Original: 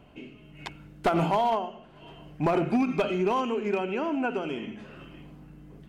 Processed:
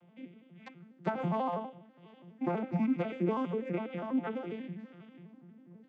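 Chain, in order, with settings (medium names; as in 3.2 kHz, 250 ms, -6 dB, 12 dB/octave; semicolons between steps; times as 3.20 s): vocoder on a broken chord major triad, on F3, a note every 82 ms; peaking EQ 1.9 kHz +6 dB 0.67 oct; trim -6 dB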